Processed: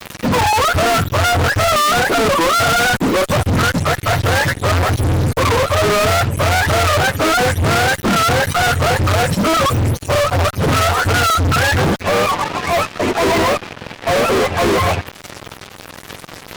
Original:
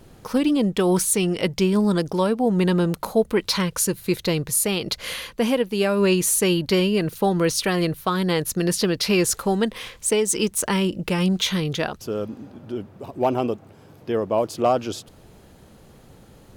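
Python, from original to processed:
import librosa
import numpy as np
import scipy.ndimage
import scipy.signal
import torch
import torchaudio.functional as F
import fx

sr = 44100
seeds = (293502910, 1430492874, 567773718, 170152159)

y = fx.octave_mirror(x, sr, pivot_hz=500.0)
y = fx.fuzz(y, sr, gain_db=45.0, gate_db=-49.0)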